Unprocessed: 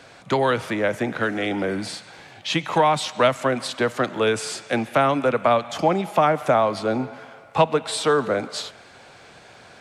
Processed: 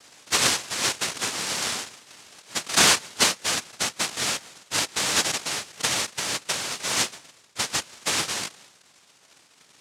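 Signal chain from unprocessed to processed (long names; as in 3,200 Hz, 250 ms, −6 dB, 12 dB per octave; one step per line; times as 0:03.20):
low-pass filter sweep 1,000 Hz → 290 Hz, 0:02.63–0:03.63
cochlear-implant simulation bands 1
level −5 dB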